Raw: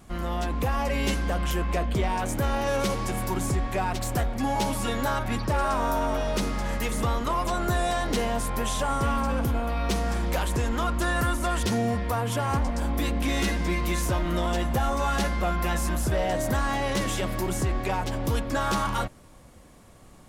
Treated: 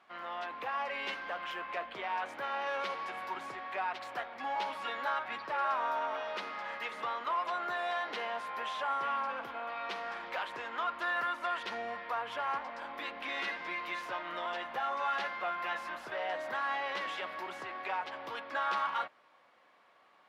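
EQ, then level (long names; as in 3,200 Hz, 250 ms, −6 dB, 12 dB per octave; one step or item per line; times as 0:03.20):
high-pass filter 1,000 Hz 12 dB per octave
high-frequency loss of the air 350 metres
0.0 dB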